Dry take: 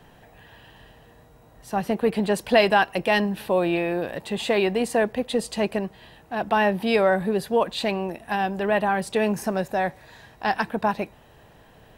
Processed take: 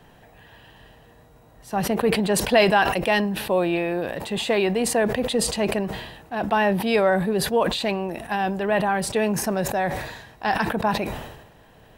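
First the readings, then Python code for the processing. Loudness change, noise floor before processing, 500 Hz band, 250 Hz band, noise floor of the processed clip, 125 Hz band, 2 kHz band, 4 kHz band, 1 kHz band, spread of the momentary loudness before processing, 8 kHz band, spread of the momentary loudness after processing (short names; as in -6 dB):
+1.0 dB, -53 dBFS, +0.5 dB, +1.5 dB, -52 dBFS, +3.5 dB, +1.0 dB, +3.0 dB, +0.5 dB, 9 LU, +9.5 dB, 10 LU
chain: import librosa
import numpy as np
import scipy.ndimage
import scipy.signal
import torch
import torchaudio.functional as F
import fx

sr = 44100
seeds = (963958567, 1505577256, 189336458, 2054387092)

y = fx.sustainer(x, sr, db_per_s=55.0)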